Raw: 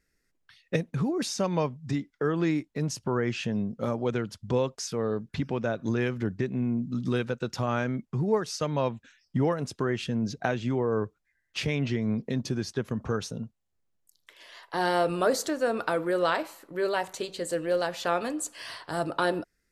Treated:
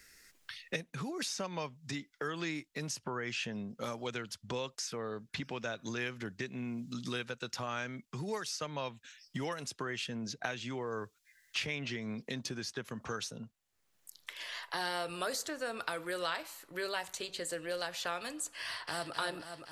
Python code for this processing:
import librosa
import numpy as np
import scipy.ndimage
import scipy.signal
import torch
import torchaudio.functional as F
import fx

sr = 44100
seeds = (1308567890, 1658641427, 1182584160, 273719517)

y = fx.echo_throw(x, sr, start_s=18.61, length_s=0.52, ms=260, feedback_pct=55, wet_db=-5.5)
y = fx.tilt_shelf(y, sr, db=-7.5, hz=970.0)
y = fx.band_squash(y, sr, depth_pct=70)
y = y * librosa.db_to_amplitude(-8.0)